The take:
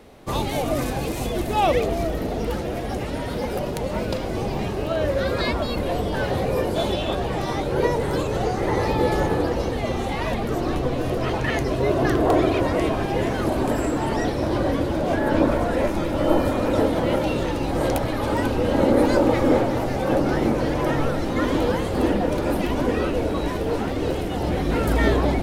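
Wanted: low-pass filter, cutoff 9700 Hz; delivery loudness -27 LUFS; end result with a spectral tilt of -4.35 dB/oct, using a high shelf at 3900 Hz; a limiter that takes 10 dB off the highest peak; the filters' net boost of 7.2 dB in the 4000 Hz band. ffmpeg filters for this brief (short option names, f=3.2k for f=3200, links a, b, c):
-af "lowpass=9.7k,highshelf=f=3.9k:g=6,equalizer=f=4k:t=o:g=5.5,volume=-3dB,alimiter=limit=-17dB:level=0:latency=1"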